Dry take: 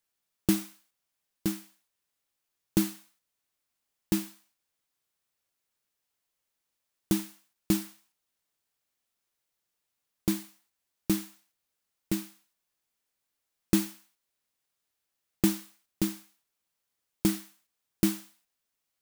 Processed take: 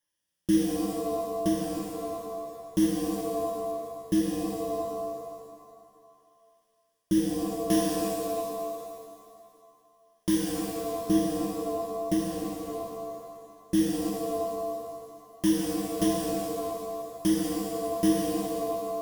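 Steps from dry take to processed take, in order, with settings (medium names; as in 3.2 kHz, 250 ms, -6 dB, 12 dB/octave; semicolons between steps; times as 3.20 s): rotary cabinet horn 0.75 Hz, later 5 Hz, at 14.18 s; peak limiter -19 dBFS, peak gain reduction 8.5 dB; rippled EQ curve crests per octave 1.2, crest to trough 13 dB; pitch-shifted reverb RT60 2.1 s, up +7 st, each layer -2 dB, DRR -1.5 dB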